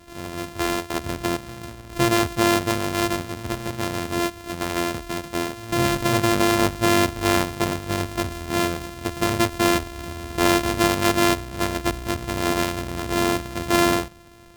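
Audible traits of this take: a buzz of ramps at a fixed pitch in blocks of 128 samples; SBC

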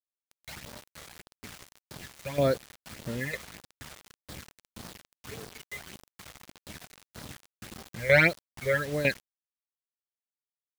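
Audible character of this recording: phasing stages 12, 1.7 Hz, lowest notch 260–2600 Hz; tremolo saw down 2.1 Hz, depth 75%; a quantiser's noise floor 8-bit, dither none

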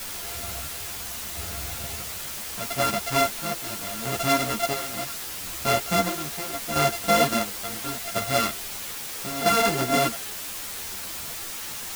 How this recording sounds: a buzz of ramps at a fixed pitch in blocks of 64 samples; chopped level 0.74 Hz, depth 65%, duty 50%; a quantiser's noise floor 6-bit, dither triangular; a shimmering, thickened sound

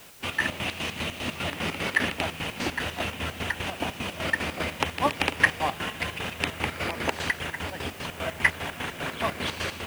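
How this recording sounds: chopped level 5 Hz, depth 65%, duty 50%; a quantiser's noise floor 10-bit, dither triangular

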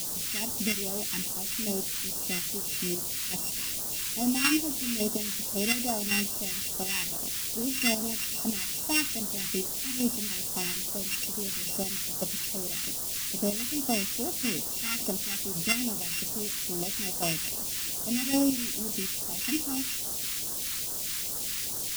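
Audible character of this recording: a buzz of ramps at a fixed pitch in blocks of 16 samples; chopped level 1.8 Hz, depth 60%, duty 30%; a quantiser's noise floor 6-bit, dither triangular; phasing stages 2, 2.4 Hz, lowest notch 600–2200 Hz

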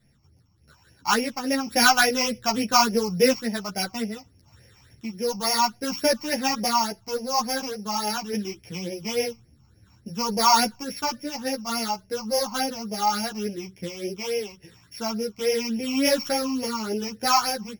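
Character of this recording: a buzz of ramps at a fixed pitch in blocks of 8 samples; phasing stages 8, 3.5 Hz, lowest notch 470–1200 Hz; random-step tremolo 1.2 Hz; a shimmering, thickened sound

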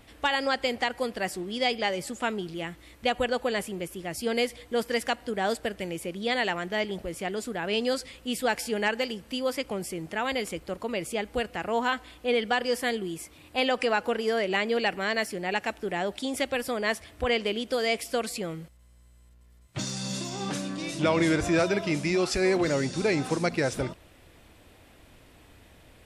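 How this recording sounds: noise floor -55 dBFS; spectral tilt -4.0 dB/oct

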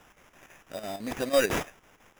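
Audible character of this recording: a quantiser's noise floor 10-bit, dither triangular; chopped level 6 Hz, depth 60%, duty 75%; aliases and images of a low sample rate 4300 Hz, jitter 0%

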